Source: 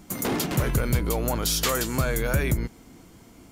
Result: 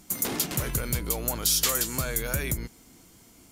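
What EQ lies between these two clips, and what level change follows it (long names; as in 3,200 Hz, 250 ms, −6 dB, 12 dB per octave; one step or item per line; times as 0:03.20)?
parametric band 12,000 Hz +11.5 dB 2.7 octaves
−7.0 dB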